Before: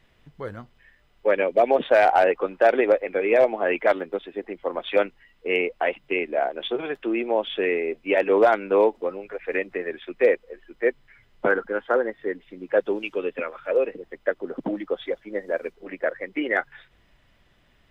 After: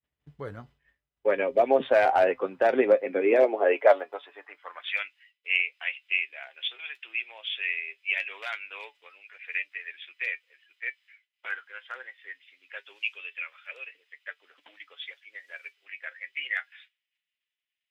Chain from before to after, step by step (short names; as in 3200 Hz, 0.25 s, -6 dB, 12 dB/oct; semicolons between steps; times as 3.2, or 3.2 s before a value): expander -46 dBFS; high-pass sweep 62 Hz -> 2500 Hz, 2.09–5.08; flange 0.21 Hz, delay 6.7 ms, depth 1.1 ms, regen +62%